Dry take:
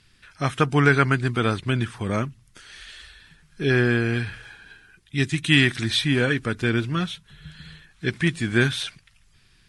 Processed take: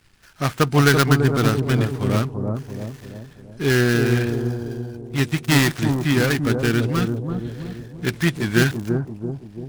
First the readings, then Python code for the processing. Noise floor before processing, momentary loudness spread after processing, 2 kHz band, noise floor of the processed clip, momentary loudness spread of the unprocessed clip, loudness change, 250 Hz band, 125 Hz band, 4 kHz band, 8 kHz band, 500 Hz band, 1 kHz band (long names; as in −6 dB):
−59 dBFS, 14 LU, 0.0 dB, −45 dBFS, 16 LU, +2.0 dB, +4.0 dB, +4.5 dB, −1.0 dB, +7.5 dB, +4.0 dB, +2.0 dB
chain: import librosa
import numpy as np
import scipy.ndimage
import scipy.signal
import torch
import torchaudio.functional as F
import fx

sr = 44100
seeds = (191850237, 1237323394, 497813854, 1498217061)

y = fx.dead_time(x, sr, dead_ms=0.15)
y = fx.echo_bbd(y, sr, ms=337, stages=2048, feedback_pct=51, wet_db=-4.0)
y = F.gain(torch.from_numpy(y), 2.5).numpy()